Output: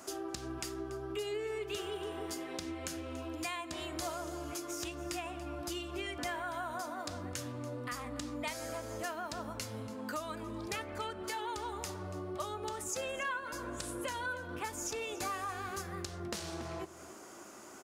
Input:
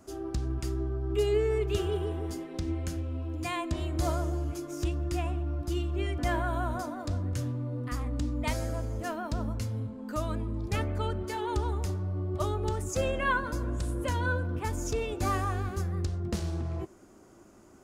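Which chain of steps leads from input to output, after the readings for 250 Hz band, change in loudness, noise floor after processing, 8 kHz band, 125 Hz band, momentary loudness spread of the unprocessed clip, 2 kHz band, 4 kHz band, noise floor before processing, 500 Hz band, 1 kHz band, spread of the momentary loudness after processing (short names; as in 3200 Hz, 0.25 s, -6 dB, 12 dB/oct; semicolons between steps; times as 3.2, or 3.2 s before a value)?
-7.5 dB, -7.5 dB, -51 dBFS, +1.5 dB, -16.5 dB, 6 LU, -4.0 dB, 0.0 dB, -54 dBFS, -7.0 dB, -4.5 dB, 4 LU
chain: HPF 1000 Hz 6 dB/oct; compressor 4:1, threshold -50 dBFS, peak gain reduction 19.5 dB; on a send: echo 0.285 s -16 dB; on the sum: gain +11.5 dB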